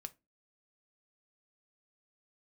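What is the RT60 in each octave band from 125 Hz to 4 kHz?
0.30, 0.40, 0.25, 0.20, 0.20, 0.15 s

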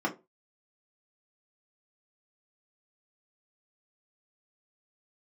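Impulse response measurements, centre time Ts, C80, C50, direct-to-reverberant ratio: 11 ms, 22.0 dB, 15.0 dB, -2.5 dB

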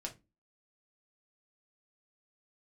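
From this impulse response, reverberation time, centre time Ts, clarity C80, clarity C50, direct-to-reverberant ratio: 0.25 s, 11 ms, 23.5 dB, 14.5 dB, 0.0 dB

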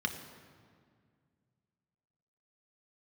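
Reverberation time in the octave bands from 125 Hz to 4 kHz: 3.0, 2.7, 2.1, 1.9, 1.7, 1.4 s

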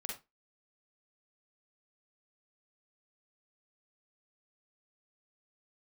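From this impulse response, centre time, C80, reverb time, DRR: 36 ms, 13.5 dB, 0.25 s, -2.0 dB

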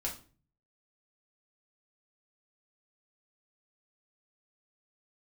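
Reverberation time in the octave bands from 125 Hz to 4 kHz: 0.75, 0.60, 0.40, 0.35, 0.35, 0.30 s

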